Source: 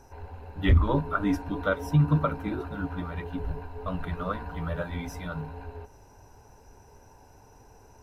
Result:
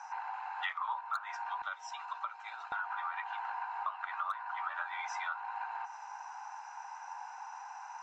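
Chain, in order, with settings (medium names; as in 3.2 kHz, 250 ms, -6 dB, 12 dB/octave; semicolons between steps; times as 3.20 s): Chebyshev band-pass 790–7300 Hz, order 5; peaking EQ 1.2 kHz +9.5 dB 2.7 oct, from 1.62 s -5.5 dB, from 2.72 s +11 dB; hard clipper -14.5 dBFS, distortion -13 dB; peaking EQ 4.3 kHz -5 dB 2.1 oct; compression 5:1, threshold -42 dBFS, peak gain reduction 20 dB; trim +6 dB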